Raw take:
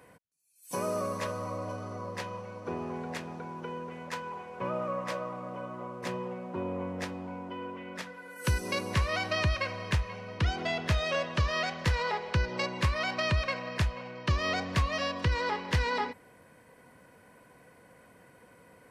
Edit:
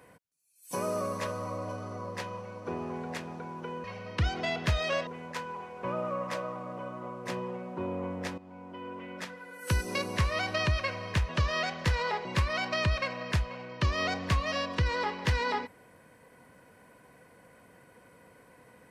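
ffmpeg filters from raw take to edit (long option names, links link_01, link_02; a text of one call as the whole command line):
ffmpeg -i in.wav -filter_complex "[0:a]asplit=6[link_01][link_02][link_03][link_04][link_05][link_06];[link_01]atrim=end=3.842[link_07];[link_02]atrim=start=10.058:end=11.292[link_08];[link_03]atrim=start=3.838:end=7.15,asetpts=PTS-STARTPTS,afade=type=out:start_time=3.308:duration=0.004:curve=hsin:silence=0.199526[link_09];[link_04]atrim=start=7.15:end=10.062,asetpts=PTS-STARTPTS,afade=type=in:duration=0.66:silence=0.199526[link_10];[link_05]atrim=start=11.288:end=12.252[link_11];[link_06]atrim=start=12.708[link_12];[link_07][link_08]acrossfade=duration=0.004:curve1=hsin:curve2=hsin[link_13];[link_09][link_10]concat=n=2:v=0:a=1[link_14];[link_13][link_14]acrossfade=duration=0.004:curve1=hsin:curve2=hsin[link_15];[link_15][link_11]acrossfade=duration=0.004:curve1=hsin:curve2=hsin[link_16];[link_16][link_12]acrossfade=duration=0.004:curve1=hsin:curve2=hsin" out.wav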